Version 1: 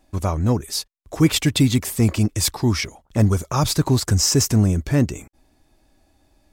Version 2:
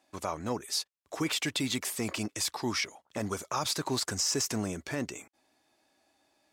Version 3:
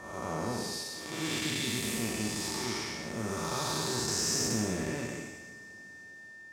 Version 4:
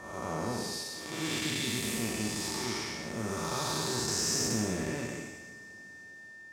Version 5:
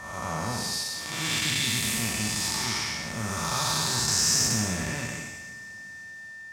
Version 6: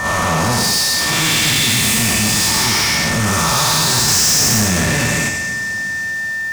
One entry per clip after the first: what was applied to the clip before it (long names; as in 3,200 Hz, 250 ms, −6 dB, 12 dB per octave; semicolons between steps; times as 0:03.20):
meter weighting curve A; brickwall limiter −15.5 dBFS, peak gain reduction 8 dB; level −4.5 dB
spectrum smeared in time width 357 ms; coupled-rooms reverb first 0.54 s, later 4.8 s, from −21 dB, DRR 2.5 dB; steady tone 1,800 Hz −50 dBFS; level +3 dB
no processing that can be heard
parametric band 370 Hz −14 dB 1.3 octaves; level +8 dB
in parallel at +0.5 dB: output level in coarse steps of 13 dB; on the sum: soft clipping −18.5 dBFS, distortion −12 dB; leveller curve on the samples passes 3; level +7 dB